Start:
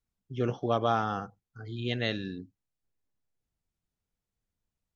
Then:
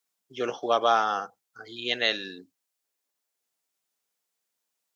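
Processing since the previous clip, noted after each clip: HPF 500 Hz 12 dB/oct; high shelf 4000 Hz +7.5 dB; gain +6 dB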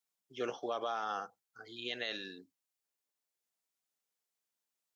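limiter -18.5 dBFS, peak gain reduction 9.5 dB; gain -7.5 dB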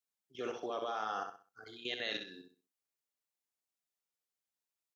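level quantiser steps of 14 dB; feedback echo 64 ms, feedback 30%, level -6.5 dB; gain +3.5 dB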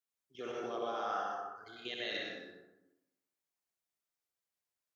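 plate-style reverb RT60 0.99 s, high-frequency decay 0.45×, pre-delay 85 ms, DRR -2 dB; gain -3.5 dB

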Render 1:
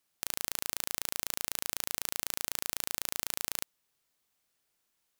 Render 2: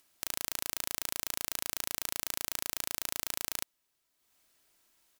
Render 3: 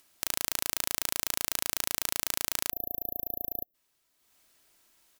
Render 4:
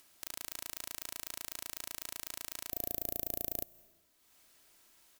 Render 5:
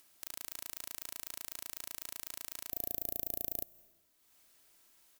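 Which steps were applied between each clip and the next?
comb 3.1 ms, depth 32%; upward compressor, threshold -59 dBFS; gain -1 dB
spectral delete 2.71–3.75, 720–12000 Hz; gain +4.5 dB
overloaded stage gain 16.5 dB; on a send at -21.5 dB: reverb RT60 1.2 s, pre-delay 0.15 s; on the sum: gain +1 dB
high shelf 9500 Hz +4 dB; gain -3.5 dB

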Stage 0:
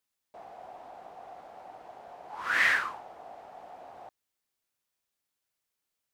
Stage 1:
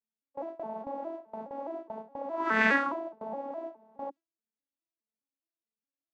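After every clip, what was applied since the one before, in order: arpeggiated vocoder major triad, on A3, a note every 0.208 s; gate with hold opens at -36 dBFS; tilt shelf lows +7.5 dB, about 840 Hz; gain +5 dB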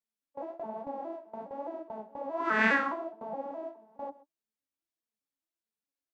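flange 1.2 Hz, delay 5.7 ms, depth 9.9 ms, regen +42%; vibrato 3.8 Hz 22 cents; outdoor echo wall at 22 m, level -19 dB; gain +3 dB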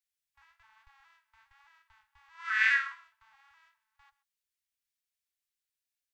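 inverse Chebyshev band-stop 190–640 Hz, stop band 60 dB; gain +3.5 dB

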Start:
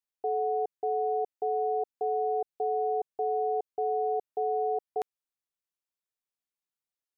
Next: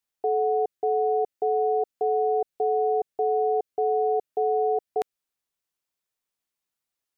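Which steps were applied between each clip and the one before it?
dynamic EQ 960 Hz, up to -7 dB, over -49 dBFS, Q 2.7; gain +6.5 dB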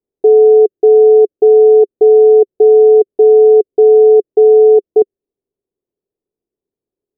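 synth low-pass 400 Hz, resonance Q 4.9; gain +8.5 dB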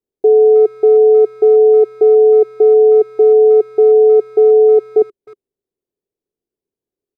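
speakerphone echo 0.31 s, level -22 dB; gain -2 dB

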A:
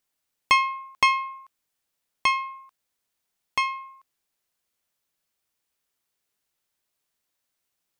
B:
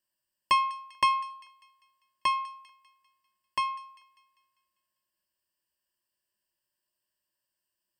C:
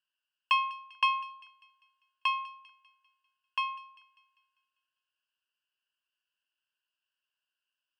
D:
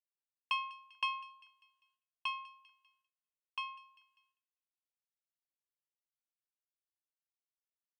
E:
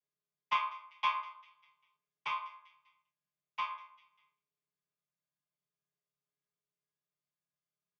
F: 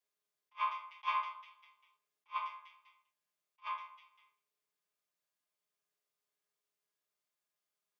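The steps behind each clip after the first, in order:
ripple EQ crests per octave 1.3, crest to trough 15 dB; thin delay 0.198 s, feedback 46%, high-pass 1700 Hz, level -18.5 dB; gain -8 dB
double band-pass 2000 Hz, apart 0.9 oct; gain +8 dB
gate with hold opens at -58 dBFS; bell 1400 Hz -6.5 dB 1.6 oct; gain -4.5 dB
chord vocoder major triad, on C#3; comb 6.6 ms, depth 92%; early reflections 27 ms -6.5 dB, 41 ms -14.5 dB
limiter -27 dBFS, peak gain reduction 8 dB; HPF 340 Hz; attack slew limiter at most 480 dB/s; gain +4 dB

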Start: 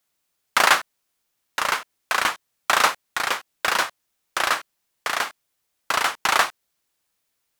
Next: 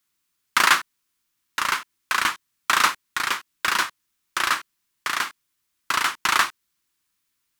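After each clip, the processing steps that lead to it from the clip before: band shelf 600 Hz -10.5 dB 1.1 oct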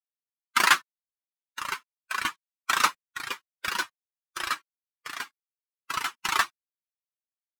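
per-bin expansion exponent 2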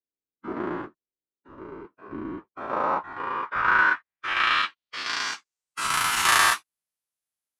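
spectral dilation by 0.24 s; low-pass sweep 370 Hz -> 11000 Hz, 2.26–6; gain -2 dB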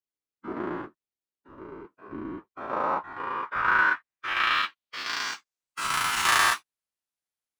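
median filter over 3 samples; gain -2 dB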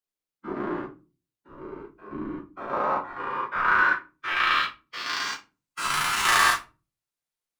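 shoebox room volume 130 m³, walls furnished, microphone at 0.9 m

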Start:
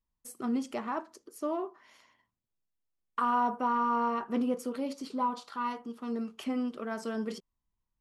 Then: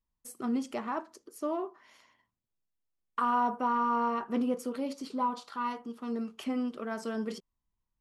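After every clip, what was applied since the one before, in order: nothing audible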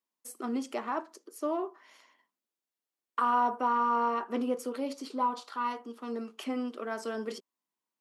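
HPF 260 Hz 24 dB/oct; gain +1.5 dB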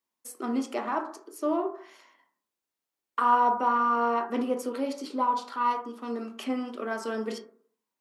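reverb RT60 0.50 s, pre-delay 13 ms, DRR 4.5 dB; gain +2.5 dB

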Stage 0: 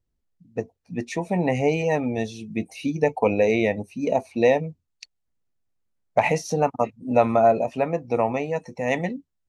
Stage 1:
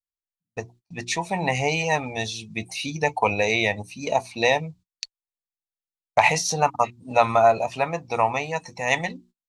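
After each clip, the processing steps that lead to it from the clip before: notches 60/120/180/240/300/360 Hz; gate -46 dBFS, range -31 dB; graphic EQ 250/500/1000/4000/8000 Hz -10/-7/+6/+9/+6 dB; gain +2.5 dB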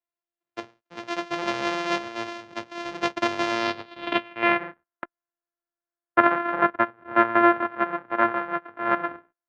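sample sorter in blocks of 128 samples; three-band isolator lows -16 dB, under 310 Hz, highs -22 dB, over 3700 Hz; low-pass sweep 6200 Hz -> 1500 Hz, 3.5–4.89; gain -1 dB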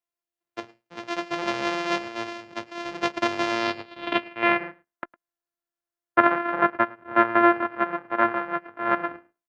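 echo 0.107 s -22.5 dB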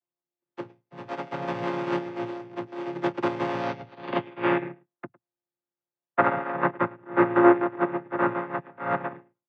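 chord vocoder minor triad, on A#2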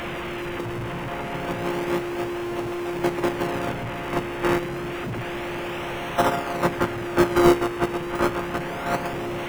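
delta modulation 16 kbps, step -25.5 dBFS; in parallel at -6 dB: decimation with a swept rate 36×, swing 100% 0.29 Hz

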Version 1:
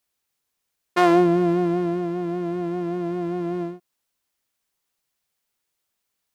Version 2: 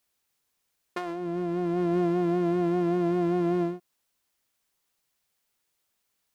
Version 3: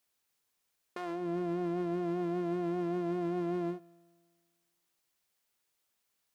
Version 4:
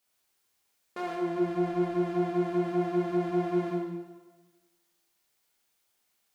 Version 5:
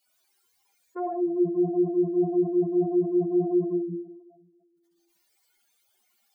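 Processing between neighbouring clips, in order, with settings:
negative-ratio compressor -25 dBFS, ratio -1; gain -1.5 dB
low shelf 150 Hz -4 dB; limiter -25 dBFS, peak gain reduction 8 dB; resonator 57 Hz, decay 1.7 s, harmonics all, mix 30%
plate-style reverb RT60 1.2 s, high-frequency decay 0.95×, DRR -4 dB
spectral contrast raised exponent 3.1; gain +5 dB

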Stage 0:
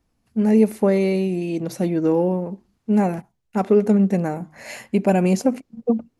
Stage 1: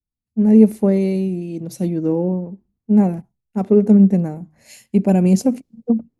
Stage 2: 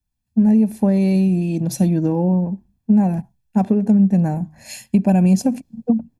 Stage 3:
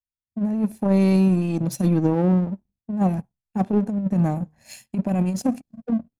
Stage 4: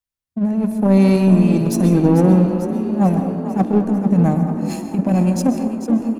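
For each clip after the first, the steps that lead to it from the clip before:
EQ curve 190 Hz 0 dB, 1400 Hz -13 dB, 9900 Hz -7 dB; three-band expander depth 70%; gain +5 dB
compressor 6:1, threshold -20 dBFS, peak gain reduction 14 dB; comb 1.2 ms, depth 56%; gain +7 dB
power-law curve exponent 1.4; negative-ratio compressor -18 dBFS, ratio -0.5
frequency-shifting echo 0.445 s, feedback 61%, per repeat +39 Hz, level -11 dB; plate-style reverb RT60 1.3 s, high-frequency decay 0.3×, pre-delay 0.115 s, DRR 7 dB; gain +5 dB

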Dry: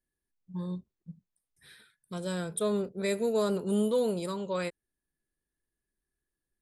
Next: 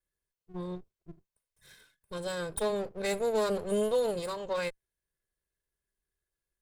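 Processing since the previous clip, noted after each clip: minimum comb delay 1.9 ms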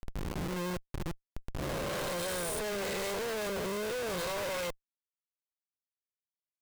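spectral swells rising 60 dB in 1.88 s; Schmitt trigger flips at -44 dBFS; gain -2 dB

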